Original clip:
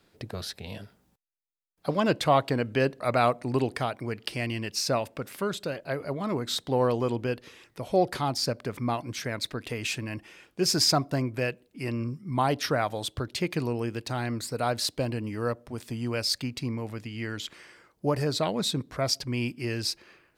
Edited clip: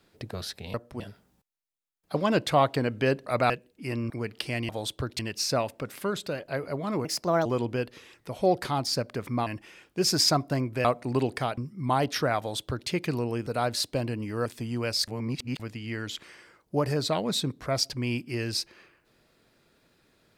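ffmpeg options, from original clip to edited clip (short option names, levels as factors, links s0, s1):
-filter_complex "[0:a]asplit=16[s0][s1][s2][s3][s4][s5][s6][s7][s8][s9][s10][s11][s12][s13][s14][s15];[s0]atrim=end=0.742[s16];[s1]atrim=start=15.498:end=15.762[s17];[s2]atrim=start=0.738:end=3.242[s18];[s3]atrim=start=11.458:end=12.062[s19];[s4]atrim=start=3.968:end=4.562[s20];[s5]atrim=start=12.868:end=13.372[s21];[s6]atrim=start=4.558:end=6.424[s22];[s7]atrim=start=6.42:end=6.96,asetpts=PTS-STARTPTS,asetrate=58653,aresample=44100,atrim=end_sample=17905,asetpts=PTS-STARTPTS[s23];[s8]atrim=start=6.956:end=8.972[s24];[s9]atrim=start=10.078:end=11.462[s25];[s10]atrim=start=3.238:end=3.972[s26];[s11]atrim=start=12.058:end=13.952[s27];[s12]atrim=start=14.508:end=15.502[s28];[s13]atrim=start=15.758:end=16.382[s29];[s14]atrim=start=16.378:end=16.902,asetpts=PTS-STARTPTS,areverse[s30];[s15]atrim=start=16.898[s31];[s16][s17]acrossfade=d=0.004:c1=hsin:c2=hsin[s32];[s32][s18]acrossfade=d=0.004:c1=hsin:c2=hsin[s33];[s33][s19]acrossfade=d=0.004:c1=hsin:c2=hsin[s34];[s34][s20]acrossfade=d=0.004:c1=hsin:c2=hsin[s35];[s35][s21]acrossfade=d=0.004:c1=hsin:c2=hsin[s36];[s36][s22]acrossfade=d=0.004:c1=hsin:c2=hsin[s37];[s37][s23]acrossfade=d=0.004:c1=hsin:c2=hsin[s38];[s38][s24]acrossfade=d=0.004:c1=hsin:c2=hsin[s39];[s39][s25]acrossfade=d=0.004:c1=hsin:c2=hsin[s40];[s40][s26]acrossfade=d=0.004:c1=hsin:c2=hsin[s41];[s41][s27]acrossfade=d=0.004:c1=hsin:c2=hsin[s42];[s42][s28]acrossfade=d=0.004:c1=hsin:c2=hsin[s43];[s43][s29]acrossfade=d=0.004:c1=hsin:c2=hsin[s44];[s44][s30]acrossfade=d=0.004:c1=hsin:c2=hsin[s45];[s45][s31]acrossfade=d=0.004:c1=hsin:c2=hsin"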